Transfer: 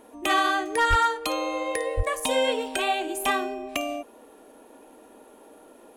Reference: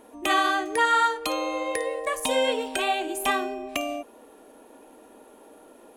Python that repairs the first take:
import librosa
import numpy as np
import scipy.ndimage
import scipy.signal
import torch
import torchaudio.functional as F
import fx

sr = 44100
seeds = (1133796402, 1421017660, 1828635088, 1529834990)

y = fx.fix_declip(x, sr, threshold_db=-13.5)
y = fx.highpass(y, sr, hz=140.0, slope=24, at=(0.89, 1.01), fade=0.02)
y = fx.highpass(y, sr, hz=140.0, slope=24, at=(1.96, 2.08), fade=0.02)